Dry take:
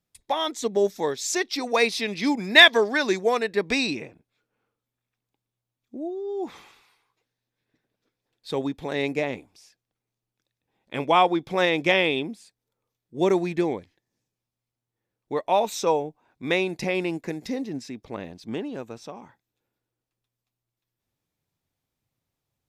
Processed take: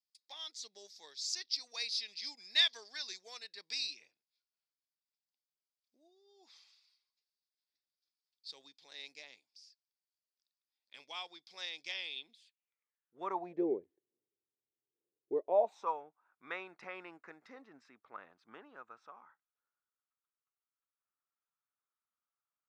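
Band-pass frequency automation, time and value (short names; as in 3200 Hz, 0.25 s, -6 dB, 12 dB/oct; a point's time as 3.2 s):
band-pass, Q 6
12.09 s 4800 Hz
13.27 s 1200 Hz
13.66 s 390 Hz
15.44 s 390 Hz
15.94 s 1300 Hz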